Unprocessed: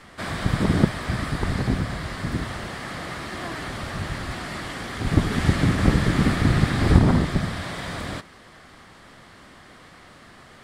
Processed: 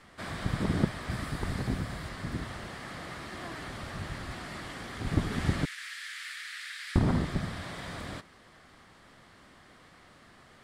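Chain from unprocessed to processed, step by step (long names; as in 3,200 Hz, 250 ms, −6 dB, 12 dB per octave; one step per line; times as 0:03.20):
0:01.10–0:02.09: high-shelf EQ 9,800 Hz +7.5 dB
0:05.65–0:06.96: Butterworth high-pass 1,600 Hz 36 dB per octave
level −8.5 dB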